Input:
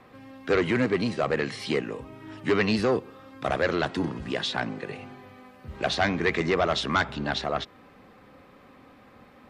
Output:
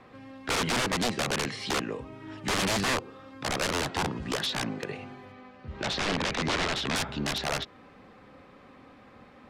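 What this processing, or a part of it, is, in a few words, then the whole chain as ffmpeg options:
overflowing digital effects unit: -filter_complex "[0:a]aeval=exprs='(mod(11.9*val(0)+1,2)-1)/11.9':channel_layout=same,lowpass=8300,asettb=1/sr,asplit=3[link_01][link_02][link_03];[link_01]atrim=end=5.324[link_04];[link_02]atrim=start=5.32:end=6.96,asetpts=PTS-STARTPTS,afade=type=in:duration=0.004:curve=qsin,afade=type=out:start_time=1.636:duration=0.004:curve=qsin,lowpass=5400[link_05];[link_03]atrim=start=6.956[link_06];[link_04][link_05]acrossfade=duration=0.004:curve1=hsin:curve2=qsin[link_07];[link_07][link_06]acrossfade=duration=0.004:curve1=qsin:curve2=hsin"

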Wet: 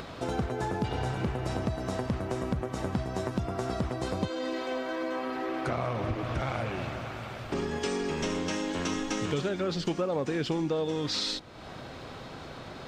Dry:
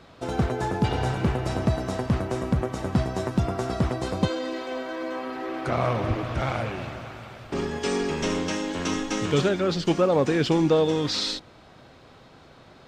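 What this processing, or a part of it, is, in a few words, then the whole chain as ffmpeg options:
upward and downward compression: -af "acompressor=mode=upward:threshold=-33dB:ratio=2.5,acompressor=threshold=-28dB:ratio=4"

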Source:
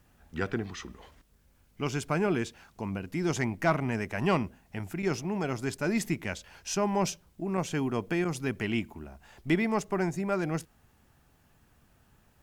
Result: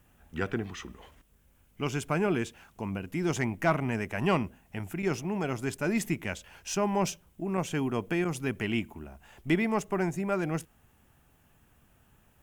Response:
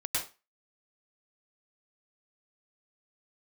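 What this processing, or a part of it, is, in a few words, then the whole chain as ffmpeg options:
exciter from parts: -filter_complex "[0:a]asplit=2[link_01][link_02];[link_02]highpass=frequency=2900:width=0.5412,highpass=frequency=2900:width=1.3066,asoftclip=type=tanh:threshold=-37.5dB,highpass=frequency=2300:width=0.5412,highpass=frequency=2300:width=1.3066,volume=-6dB[link_03];[link_01][link_03]amix=inputs=2:normalize=0"

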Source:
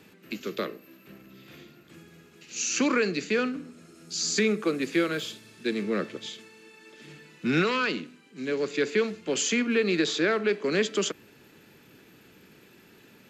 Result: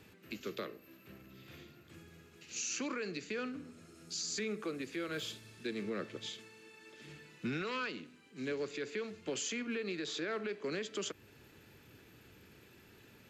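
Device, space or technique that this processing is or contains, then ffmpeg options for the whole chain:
car stereo with a boomy subwoofer: -af "lowshelf=frequency=130:width_type=q:width=1.5:gain=7.5,alimiter=limit=-24dB:level=0:latency=1:release=316,volume=-5dB"

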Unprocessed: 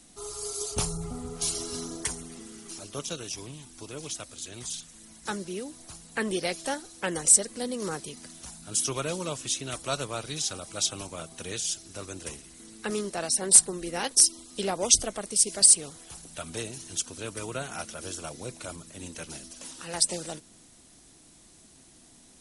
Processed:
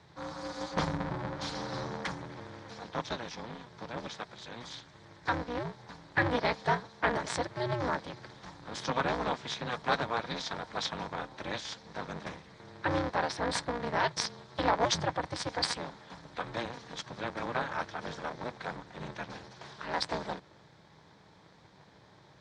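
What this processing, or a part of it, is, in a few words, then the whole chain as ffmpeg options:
ring modulator pedal into a guitar cabinet: -af "aeval=exprs='val(0)*sgn(sin(2*PI*120*n/s))':channel_layout=same,highpass=84,equalizer=frequency=160:width_type=q:width=4:gain=5,equalizer=frequency=240:width_type=q:width=4:gain=-6,equalizer=frequency=380:width_type=q:width=4:gain=-5,equalizer=frequency=940:width_type=q:width=4:gain=6,equalizer=frequency=1700:width_type=q:width=4:gain=4,equalizer=frequency=2800:width_type=q:width=4:gain=-10,lowpass=frequency=3900:width=0.5412,lowpass=frequency=3900:width=1.3066,volume=1.5dB"

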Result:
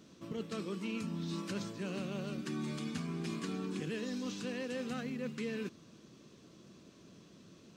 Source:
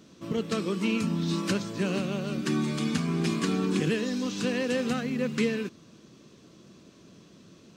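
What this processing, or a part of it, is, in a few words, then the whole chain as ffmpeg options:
compression on the reversed sound: -af "areverse,acompressor=threshold=-31dB:ratio=6,areverse,volume=-4.5dB"

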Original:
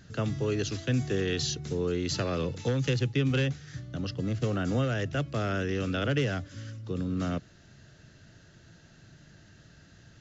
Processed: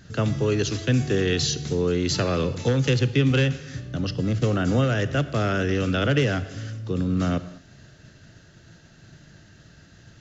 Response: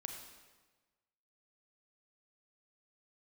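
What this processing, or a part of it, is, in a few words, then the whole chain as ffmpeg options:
keyed gated reverb: -filter_complex "[0:a]asplit=3[link_01][link_02][link_03];[1:a]atrim=start_sample=2205[link_04];[link_02][link_04]afir=irnorm=-1:irlink=0[link_05];[link_03]apad=whole_len=450254[link_06];[link_05][link_06]sidechaingate=range=-33dB:threshold=-52dB:ratio=16:detection=peak,volume=-4dB[link_07];[link_01][link_07]amix=inputs=2:normalize=0,volume=3.5dB"

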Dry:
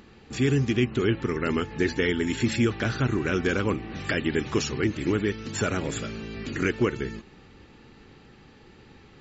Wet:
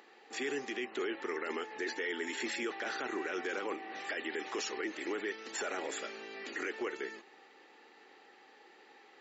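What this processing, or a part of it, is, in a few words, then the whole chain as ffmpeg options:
laptop speaker: -af "highpass=frequency=360:width=0.5412,highpass=frequency=360:width=1.3066,equalizer=frequency=790:width_type=o:width=0.26:gain=8,equalizer=frequency=1900:width_type=o:width=0.25:gain=7,alimiter=limit=-22.5dB:level=0:latency=1:release=14,volume=-5.5dB"

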